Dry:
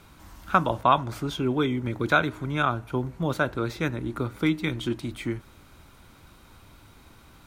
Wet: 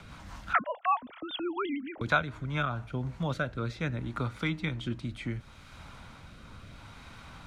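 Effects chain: 0.53–2.01 sine-wave speech; bell 350 Hz -11 dB 0.8 oct; rotary speaker horn 5 Hz, later 0.7 Hz, at 2.46; air absorption 64 m; three-band squash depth 40%

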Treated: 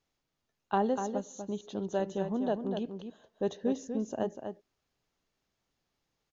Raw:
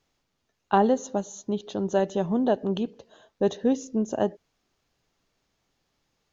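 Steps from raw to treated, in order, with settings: outdoor echo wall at 42 m, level -7 dB; gain -8 dB

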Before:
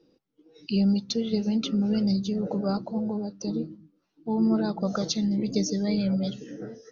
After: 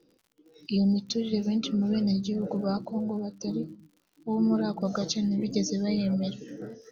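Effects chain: spectral delete 0.77–0.98, 920–3000 Hz; crackle 75/s -48 dBFS; gain -1.5 dB

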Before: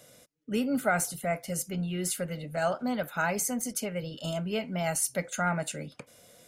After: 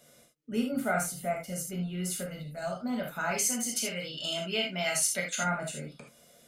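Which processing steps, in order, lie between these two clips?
2.37–2.84 spectral gain 220–3400 Hz -6 dB; 3.31–5.43 weighting filter D; non-linear reverb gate 0.1 s flat, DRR -0.5 dB; gain -6 dB

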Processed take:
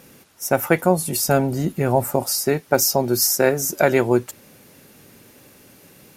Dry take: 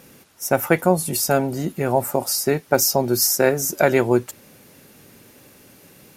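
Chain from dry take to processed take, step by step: 1.25–2.26 low shelf 140 Hz +8.5 dB

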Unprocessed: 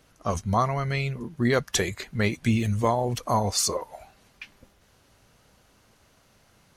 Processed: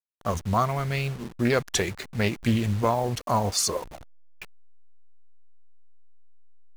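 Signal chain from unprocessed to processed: level-crossing sampler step -36.5 dBFS; Doppler distortion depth 0.29 ms

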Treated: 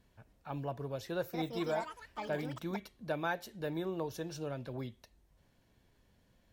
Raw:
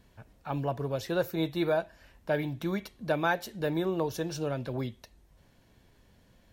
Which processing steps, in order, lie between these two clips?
1.09–3.12 echoes that change speed 0.238 s, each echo +6 st, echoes 3, each echo -6 dB; gain -7.5 dB

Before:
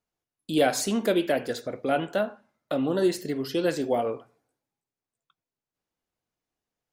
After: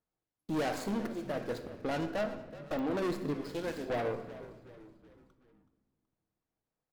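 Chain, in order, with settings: median filter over 15 samples; 0.88–1.82 auto swell 0.53 s; 3.34–3.9 HPF 960 Hz 6 dB/oct; tube stage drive 30 dB, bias 0.5; frequency-shifting echo 0.375 s, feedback 48%, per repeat -63 Hz, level -15.5 dB; shoebox room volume 1200 m³, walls mixed, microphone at 0.59 m; pops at 2.79, -30 dBFS

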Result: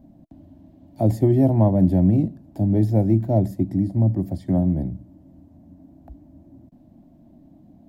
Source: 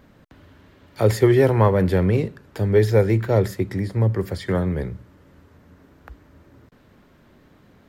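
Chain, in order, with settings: EQ curve 110 Hz 0 dB, 170 Hz +4 dB, 310 Hz +8 dB, 440 Hz -19 dB, 660 Hz +5 dB, 1300 Hz -25 dB, 12000 Hz -9 dB

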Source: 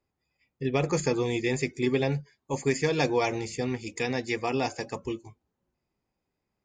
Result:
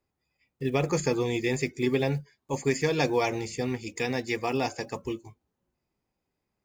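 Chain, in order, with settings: block floating point 7-bit

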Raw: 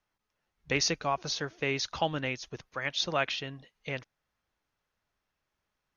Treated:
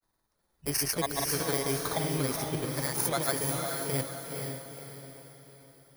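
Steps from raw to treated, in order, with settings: FFT order left unsorted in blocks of 16 samples; in parallel at -3 dB: negative-ratio compressor -37 dBFS; on the sum: grains, pitch spread up and down by 0 st; diffused feedback echo 0.474 s, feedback 44%, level -3 dB

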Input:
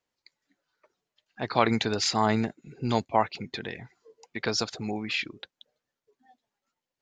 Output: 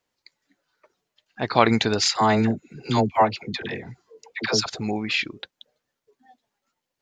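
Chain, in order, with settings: 2.08–4.66 dispersion lows, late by 79 ms, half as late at 660 Hz; gain +5.5 dB

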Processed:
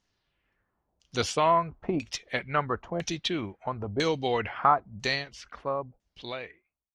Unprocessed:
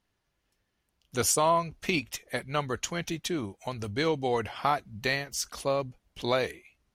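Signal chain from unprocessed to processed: ending faded out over 2.23 s; LFO low-pass saw down 1 Hz 600–7000 Hz

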